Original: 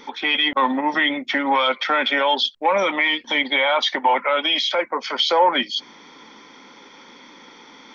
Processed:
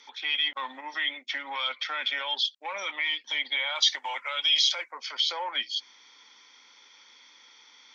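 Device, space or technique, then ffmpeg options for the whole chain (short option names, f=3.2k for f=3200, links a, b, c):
piezo pickup straight into a mixer: -filter_complex "[0:a]lowpass=5.9k,aderivative,asettb=1/sr,asplit=3[a][b][c];[a]atrim=end=3.754[d];[b]atrim=start=3.75:end=4.92,asetpts=PTS-STARTPTS,afade=t=in:d=0.004:c=qsin,afade=t=out:st=1.166:d=0.004:c=qsin,bass=f=250:g=-11,treble=f=4k:g=13[e];[c]atrim=start=4.916[f];[d][e]acrossfade=d=0.004:c1=hsin:c2=qsin[g];[g][f]acrossfade=d=0.004:c1=qsin:c2=hsin,volume=1dB"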